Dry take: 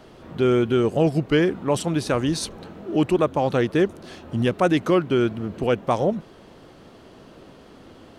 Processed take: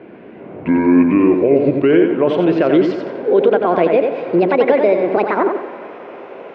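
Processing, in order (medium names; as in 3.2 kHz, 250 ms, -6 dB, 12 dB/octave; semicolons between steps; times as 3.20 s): gliding tape speed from 51% -> 199%; cabinet simulation 330–2300 Hz, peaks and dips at 400 Hz +3 dB, 830 Hz -8 dB, 1.2 kHz -9 dB, 1.8 kHz -9 dB; reverberation RT60 3.7 s, pre-delay 88 ms, DRR 18 dB; loudness maximiser +19 dB; modulated delay 89 ms, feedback 34%, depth 53 cents, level -5.5 dB; trim -4.5 dB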